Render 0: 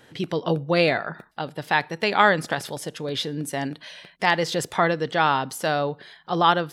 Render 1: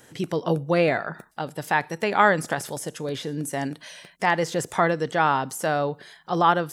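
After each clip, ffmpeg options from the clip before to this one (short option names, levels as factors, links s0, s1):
-filter_complex "[0:a]acrossover=split=2800[s0][s1];[s1]acompressor=threshold=0.01:ratio=4:attack=1:release=60[s2];[s0][s2]amix=inputs=2:normalize=0,highshelf=f=5300:t=q:w=1.5:g=8.5"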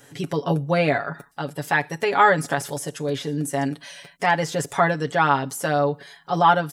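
-af "aecho=1:1:7.1:0.73"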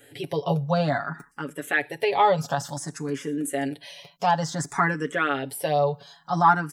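-filter_complex "[0:a]asplit=2[s0][s1];[s1]afreqshift=0.56[s2];[s0][s2]amix=inputs=2:normalize=1"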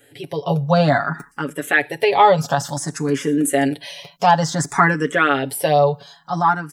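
-af "dynaudnorm=f=130:g=9:m=3.55"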